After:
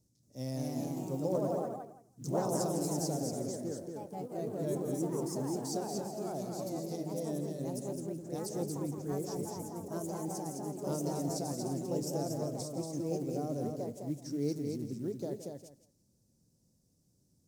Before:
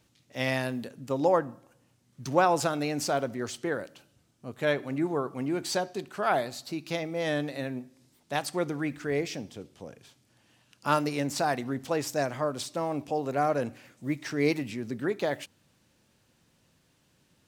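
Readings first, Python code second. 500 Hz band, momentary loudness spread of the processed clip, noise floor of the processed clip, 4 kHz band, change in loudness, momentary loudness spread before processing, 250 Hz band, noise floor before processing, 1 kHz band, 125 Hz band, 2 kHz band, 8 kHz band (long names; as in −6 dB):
−6.5 dB, 7 LU, −72 dBFS, −10.5 dB, −6.5 dB, 12 LU, −3.5 dB, −68 dBFS, −11.5 dB, −1.0 dB, −24.5 dB, −1.5 dB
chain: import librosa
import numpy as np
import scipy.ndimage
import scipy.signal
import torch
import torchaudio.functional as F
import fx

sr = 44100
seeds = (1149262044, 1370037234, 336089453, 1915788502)

p1 = fx.curve_eq(x, sr, hz=(180.0, 530.0, 1600.0, 3000.0, 5400.0), db=(0, -7, -27, -27, -2))
p2 = p1 + 10.0 ** (-4.5 / 20.0) * np.pad(p1, (int(234 * sr / 1000.0), 0))[:len(p1)]
p3 = fx.echo_pitch(p2, sr, ms=230, semitones=2, count=3, db_per_echo=-3.0)
p4 = p3 + fx.echo_feedback(p3, sr, ms=168, feedback_pct=16, wet_db=-12.5, dry=0)
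p5 = fx.quant_float(p4, sr, bits=4)
y = F.gain(torch.from_numpy(p5), -4.0).numpy()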